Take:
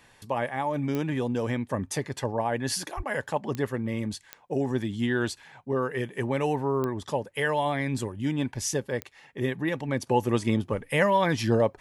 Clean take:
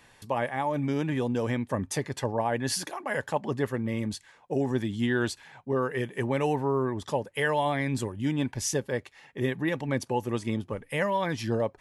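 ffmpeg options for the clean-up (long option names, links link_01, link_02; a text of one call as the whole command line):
ffmpeg -i in.wav -filter_complex "[0:a]adeclick=threshold=4,asplit=3[link_01][link_02][link_03];[link_01]afade=type=out:start_time=2.96:duration=0.02[link_04];[link_02]highpass=frequency=140:width=0.5412,highpass=frequency=140:width=1.3066,afade=type=in:start_time=2.96:duration=0.02,afade=type=out:start_time=3.08:duration=0.02[link_05];[link_03]afade=type=in:start_time=3.08:duration=0.02[link_06];[link_04][link_05][link_06]amix=inputs=3:normalize=0,asetnsamples=nb_out_samples=441:pad=0,asendcmd='10.07 volume volume -5dB',volume=0dB" out.wav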